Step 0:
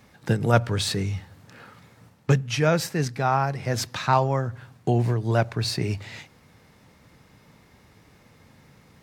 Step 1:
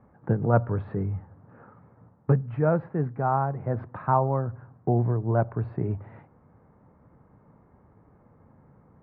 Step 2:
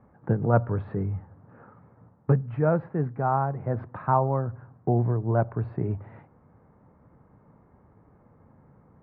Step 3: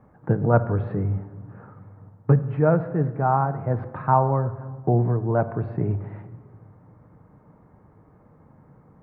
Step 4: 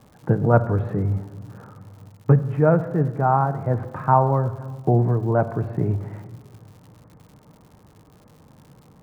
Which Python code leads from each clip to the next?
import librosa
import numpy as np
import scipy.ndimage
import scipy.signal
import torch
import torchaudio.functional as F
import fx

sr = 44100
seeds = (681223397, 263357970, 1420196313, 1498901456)

y1 = scipy.signal.sosfilt(scipy.signal.cheby2(4, 80, 6900.0, 'lowpass', fs=sr, output='sos'), x)
y1 = y1 * librosa.db_to_amplitude(-1.5)
y2 = y1
y3 = fx.room_shoebox(y2, sr, seeds[0], volume_m3=1900.0, walls='mixed', distance_m=0.51)
y3 = y3 * librosa.db_to_amplitude(3.0)
y4 = fx.dmg_crackle(y3, sr, seeds[1], per_s=150.0, level_db=-44.0)
y4 = y4 * librosa.db_to_amplitude(2.0)